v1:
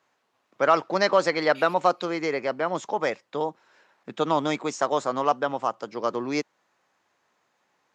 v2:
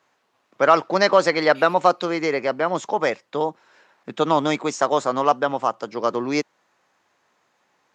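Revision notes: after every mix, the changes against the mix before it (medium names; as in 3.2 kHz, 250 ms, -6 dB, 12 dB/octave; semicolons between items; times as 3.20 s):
first voice +4.5 dB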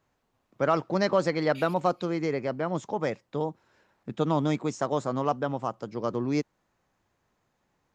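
first voice -10.5 dB; master: remove frequency weighting A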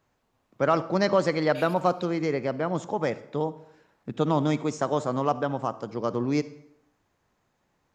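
reverb: on, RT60 0.75 s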